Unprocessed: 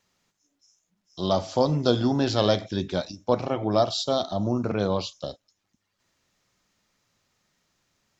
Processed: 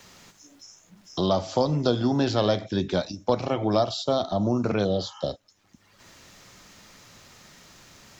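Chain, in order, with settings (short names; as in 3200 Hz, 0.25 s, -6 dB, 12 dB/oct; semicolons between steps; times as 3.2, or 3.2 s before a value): spectral repair 4.87–5.24, 790–3200 Hz after; three-band squash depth 70%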